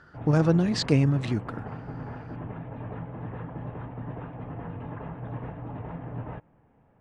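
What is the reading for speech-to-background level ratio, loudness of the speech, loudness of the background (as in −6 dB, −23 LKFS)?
14.0 dB, −24.0 LKFS, −38.0 LKFS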